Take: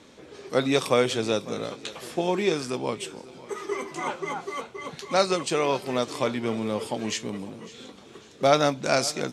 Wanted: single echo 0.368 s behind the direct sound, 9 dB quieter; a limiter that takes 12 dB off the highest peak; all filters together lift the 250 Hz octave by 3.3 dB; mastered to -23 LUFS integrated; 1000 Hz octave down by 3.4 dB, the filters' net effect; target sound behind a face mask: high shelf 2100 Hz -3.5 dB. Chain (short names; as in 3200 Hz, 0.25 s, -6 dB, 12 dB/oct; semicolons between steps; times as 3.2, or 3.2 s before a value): bell 250 Hz +4.5 dB; bell 1000 Hz -4.5 dB; limiter -18 dBFS; high shelf 2100 Hz -3.5 dB; echo 0.368 s -9 dB; gain +7.5 dB